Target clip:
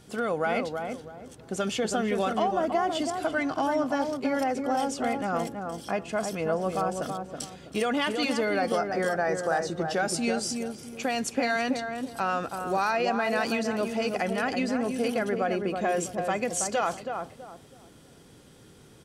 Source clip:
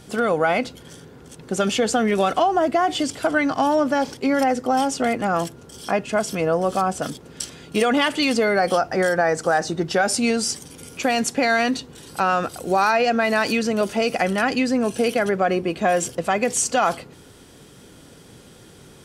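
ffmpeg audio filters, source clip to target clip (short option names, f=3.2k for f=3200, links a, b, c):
-filter_complex "[0:a]asplit=2[a][b];[b]adelay=326,lowpass=f=1.1k:p=1,volume=-4dB,asplit=2[c][d];[d]adelay=326,lowpass=f=1.1k:p=1,volume=0.32,asplit=2[e][f];[f]adelay=326,lowpass=f=1.1k:p=1,volume=0.32,asplit=2[g][h];[h]adelay=326,lowpass=f=1.1k:p=1,volume=0.32[i];[a][c][e][g][i]amix=inputs=5:normalize=0,volume=-8dB"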